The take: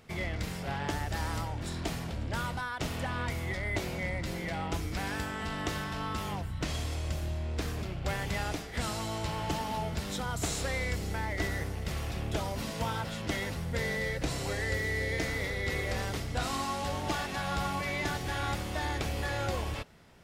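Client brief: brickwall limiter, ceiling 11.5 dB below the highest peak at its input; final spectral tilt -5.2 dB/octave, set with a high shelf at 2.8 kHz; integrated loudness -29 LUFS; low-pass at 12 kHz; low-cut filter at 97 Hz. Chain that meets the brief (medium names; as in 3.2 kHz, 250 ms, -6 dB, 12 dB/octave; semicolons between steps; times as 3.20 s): high-pass 97 Hz; low-pass 12 kHz; treble shelf 2.8 kHz -6 dB; trim +10 dB; peak limiter -19.5 dBFS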